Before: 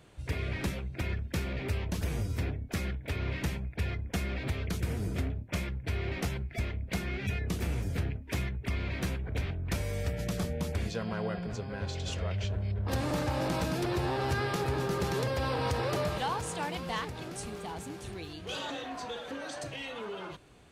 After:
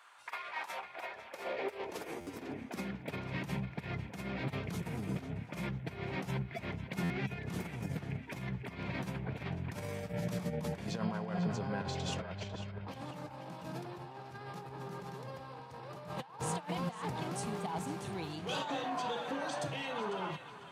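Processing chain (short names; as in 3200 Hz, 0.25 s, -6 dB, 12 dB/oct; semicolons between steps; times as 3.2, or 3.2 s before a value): bell 900 Hz +9 dB 0.88 oct; negative-ratio compressor -34 dBFS, ratio -0.5; high-pass sweep 1300 Hz -> 150 Hz, 0.12–3.31; on a send: narrowing echo 0.498 s, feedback 52%, band-pass 2200 Hz, level -8.5 dB; on the sum: stuck buffer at 2.2/7.03, samples 512, times 5; gain -5 dB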